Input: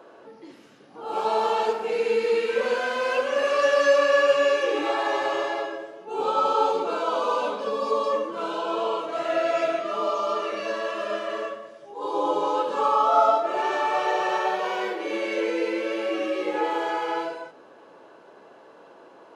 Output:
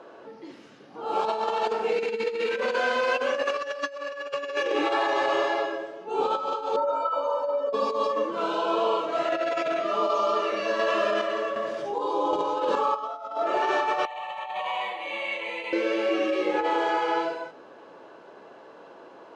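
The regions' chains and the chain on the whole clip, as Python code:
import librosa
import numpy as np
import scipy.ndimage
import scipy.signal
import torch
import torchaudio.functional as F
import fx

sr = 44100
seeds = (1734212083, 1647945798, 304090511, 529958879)

y = fx.chain(x, sr, fx.band_shelf(hz=750.0, db=15.5, octaves=2.3),
    fx.stiff_resonator(f0_hz=270.0, decay_s=0.39, stiffness=0.03), at=(6.76, 7.73))
y = fx.chain(y, sr, fx.chopper(hz=1.3, depth_pct=60, duty_pct=55),
    fx.env_flatten(amount_pct=50), at=(10.79, 12.96))
y = fx.chain(y, sr, fx.peak_eq(hz=250.0, db=-11.0, octaves=1.7),
    fx.over_compress(threshold_db=-30.0, ratio=-0.5),
    fx.fixed_phaser(hz=1500.0, stages=6), at=(14.05, 15.73))
y = scipy.signal.sosfilt(scipy.signal.butter(2, 7000.0, 'lowpass', fs=sr, output='sos'), y)
y = fx.over_compress(y, sr, threshold_db=-25.0, ratio=-0.5)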